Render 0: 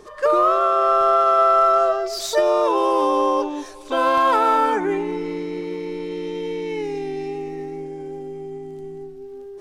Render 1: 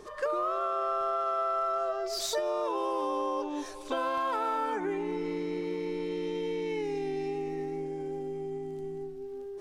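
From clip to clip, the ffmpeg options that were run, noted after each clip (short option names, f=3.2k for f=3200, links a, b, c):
-af "acompressor=threshold=-26dB:ratio=4,volume=-3.5dB"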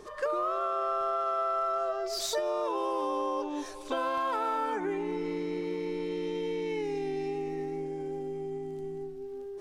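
-af anull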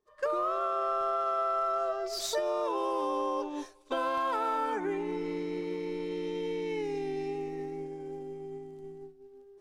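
-af "agate=range=-33dB:threshold=-31dB:ratio=3:detection=peak"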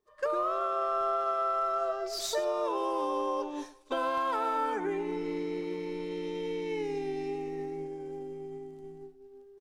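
-af "aecho=1:1:106:0.15"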